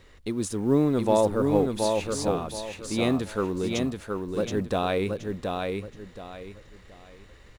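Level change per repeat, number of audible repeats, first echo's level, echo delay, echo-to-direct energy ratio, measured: -11.0 dB, 3, -4.0 dB, 0.724 s, -3.5 dB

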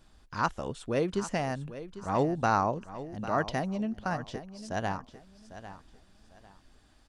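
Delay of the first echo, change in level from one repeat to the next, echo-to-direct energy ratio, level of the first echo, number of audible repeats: 0.799 s, -11.5 dB, -13.0 dB, -13.5 dB, 2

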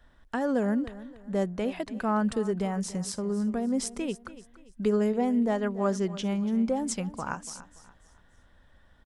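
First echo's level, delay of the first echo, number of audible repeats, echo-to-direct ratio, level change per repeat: -16.5 dB, 0.287 s, 3, -16.0 dB, -8.5 dB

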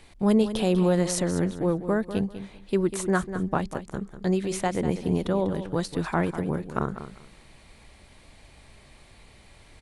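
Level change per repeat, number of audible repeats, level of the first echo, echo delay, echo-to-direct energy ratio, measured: -13.5 dB, 2, -11.5 dB, 0.196 s, -11.5 dB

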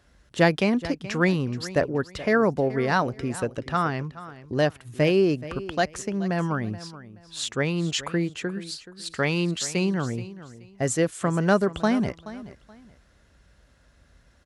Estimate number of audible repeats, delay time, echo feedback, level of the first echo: 2, 0.427 s, 25%, -16.0 dB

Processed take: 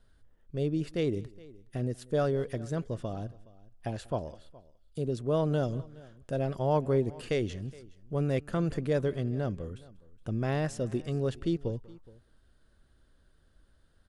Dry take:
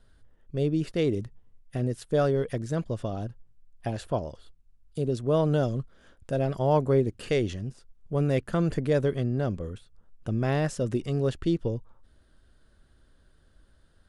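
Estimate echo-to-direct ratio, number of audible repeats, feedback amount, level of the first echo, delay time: -19.5 dB, 2, no steady repeat, -23.5 dB, 0.19 s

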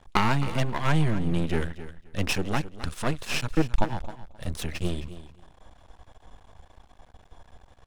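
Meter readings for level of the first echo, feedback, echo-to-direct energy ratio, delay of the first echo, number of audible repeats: -14.0 dB, 17%, -14.0 dB, 0.264 s, 2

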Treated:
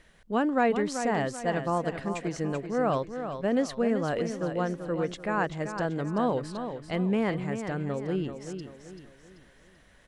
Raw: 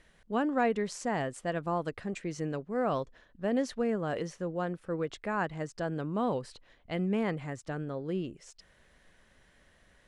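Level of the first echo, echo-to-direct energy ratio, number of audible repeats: -8.5 dB, -8.0 dB, 4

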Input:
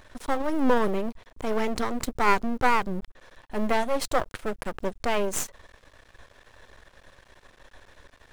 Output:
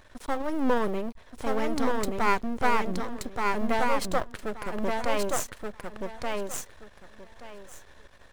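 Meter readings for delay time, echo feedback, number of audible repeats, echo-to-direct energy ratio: 1.177 s, 20%, 3, -3.0 dB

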